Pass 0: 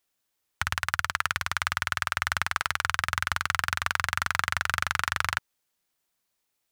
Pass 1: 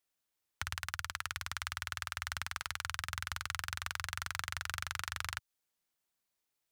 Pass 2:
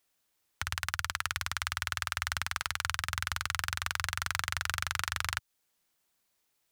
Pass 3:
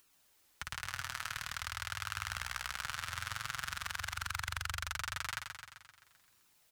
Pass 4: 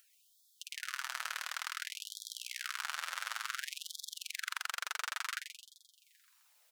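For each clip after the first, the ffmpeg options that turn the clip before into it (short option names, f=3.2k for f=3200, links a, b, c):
-filter_complex "[0:a]acrossover=split=120|3000[a][b][c];[b]acompressor=threshold=-35dB:ratio=2[d];[a][d][c]amix=inputs=3:normalize=0,volume=-7dB"
-af "alimiter=limit=-22.5dB:level=0:latency=1:release=385,volume=8.5dB"
-af "acompressor=mode=upward:threshold=-50dB:ratio=2.5,flanger=delay=0.7:depth=6.8:regen=-24:speed=0.47:shape=sinusoidal,aecho=1:1:130|260|390|520|650|780|910|1040:0.501|0.296|0.174|0.103|0.0607|0.0358|0.0211|0.0125,volume=-3.5dB"
-af "afftfilt=real='re*gte(b*sr/1024,430*pow(3300/430,0.5+0.5*sin(2*PI*0.56*pts/sr)))':imag='im*gte(b*sr/1024,430*pow(3300/430,0.5+0.5*sin(2*PI*0.56*pts/sr)))':win_size=1024:overlap=0.75,volume=1dB"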